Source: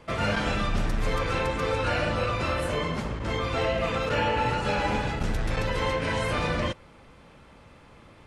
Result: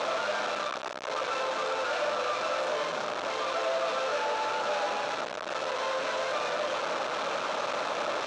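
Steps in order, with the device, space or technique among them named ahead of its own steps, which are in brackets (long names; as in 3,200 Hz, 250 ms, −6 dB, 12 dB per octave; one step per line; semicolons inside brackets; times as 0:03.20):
home computer beeper (sign of each sample alone; loudspeaker in its box 510–5,500 Hz, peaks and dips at 610 Hz +8 dB, 1,300 Hz +4 dB, 2,000 Hz −7 dB, 3,000 Hz −4 dB, 4,800 Hz −6 dB)
level −1.5 dB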